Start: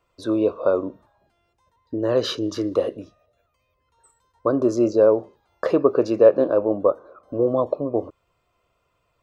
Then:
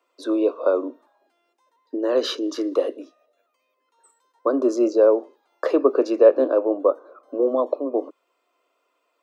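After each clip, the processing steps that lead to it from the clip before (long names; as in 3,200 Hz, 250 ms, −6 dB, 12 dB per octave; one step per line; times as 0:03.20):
Butterworth high-pass 250 Hz 72 dB per octave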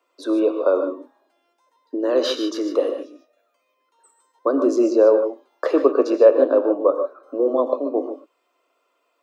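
reverb whose tail is shaped and stops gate 170 ms rising, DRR 7 dB
level +1 dB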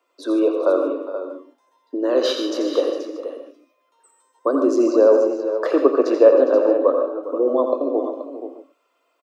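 multi-tap delay 85/313/408/479 ms −8/−19.5/−15/−11 dB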